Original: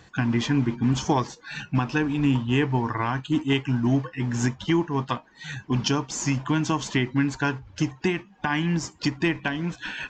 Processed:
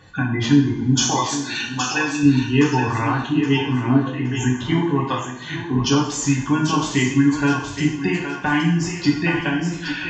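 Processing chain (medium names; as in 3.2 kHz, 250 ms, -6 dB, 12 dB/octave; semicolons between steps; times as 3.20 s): spectral gate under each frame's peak -25 dB strong; 0.97–2.23 s: tilt EQ +4.5 dB/octave; thinning echo 819 ms, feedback 32%, high-pass 420 Hz, level -7 dB; two-slope reverb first 0.6 s, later 1.9 s, from -18 dB, DRR -3.5 dB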